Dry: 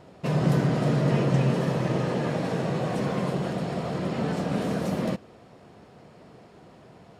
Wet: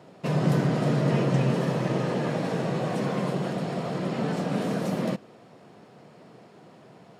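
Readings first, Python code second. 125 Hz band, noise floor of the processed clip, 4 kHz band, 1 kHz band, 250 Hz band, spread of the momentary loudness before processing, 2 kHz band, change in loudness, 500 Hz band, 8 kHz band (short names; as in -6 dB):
-1.0 dB, -52 dBFS, 0.0 dB, 0.0 dB, 0.0 dB, 7 LU, 0.0 dB, -0.5 dB, 0.0 dB, 0.0 dB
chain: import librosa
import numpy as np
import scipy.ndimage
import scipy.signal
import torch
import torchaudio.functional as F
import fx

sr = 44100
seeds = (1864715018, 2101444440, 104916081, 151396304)

y = scipy.signal.sosfilt(scipy.signal.butter(4, 120.0, 'highpass', fs=sr, output='sos'), x)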